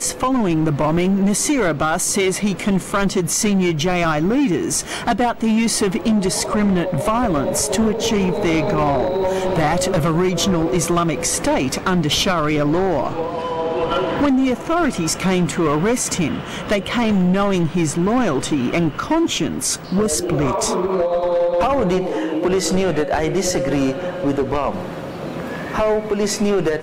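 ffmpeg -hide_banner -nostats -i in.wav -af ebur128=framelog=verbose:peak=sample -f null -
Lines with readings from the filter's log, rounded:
Integrated loudness:
  I:         -18.7 LUFS
  Threshold: -28.7 LUFS
Loudness range:
  LRA:         1.3 LU
  Threshold: -38.7 LUFS
  LRA low:   -19.3 LUFS
  LRA high:  -18.0 LUFS
Sample peak:
  Peak:       -9.7 dBFS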